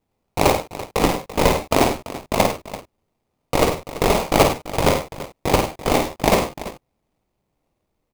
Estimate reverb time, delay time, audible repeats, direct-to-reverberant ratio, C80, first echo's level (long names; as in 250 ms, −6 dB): no reverb audible, 51 ms, 3, no reverb audible, no reverb audible, −6.5 dB